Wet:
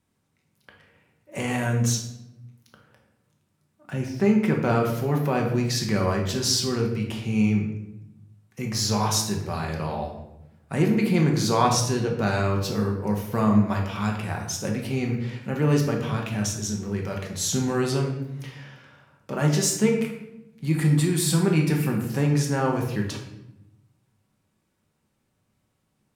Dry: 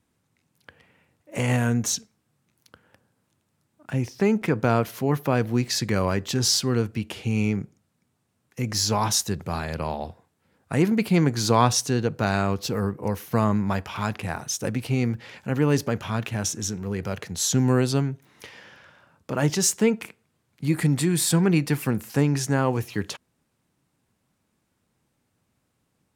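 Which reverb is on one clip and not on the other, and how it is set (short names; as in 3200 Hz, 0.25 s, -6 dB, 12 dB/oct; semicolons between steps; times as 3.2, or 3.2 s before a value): shoebox room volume 290 m³, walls mixed, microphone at 1.1 m; gain -3.5 dB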